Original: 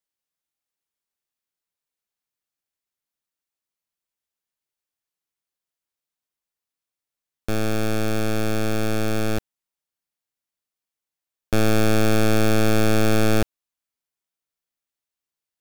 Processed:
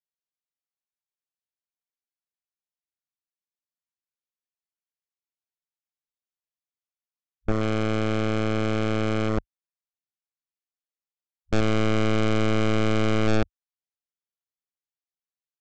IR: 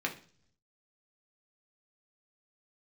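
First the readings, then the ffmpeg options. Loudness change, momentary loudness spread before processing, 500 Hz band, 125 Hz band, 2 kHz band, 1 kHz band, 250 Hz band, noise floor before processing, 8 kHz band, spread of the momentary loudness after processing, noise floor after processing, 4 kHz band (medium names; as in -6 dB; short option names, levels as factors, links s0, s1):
-2.5 dB, 8 LU, -2.5 dB, -2.0 dB, -3.0 dB, -2.0 dB, -2.5 dB, under -85 dBFS, -11.0 dB, 6 LU, under -85 dBFS, -3.5 dB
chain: -af "afwtdn=0.0282,aresample=16000,asoftclip=type=hard:threshold=0.0794,aresample=44100,volume=1.58"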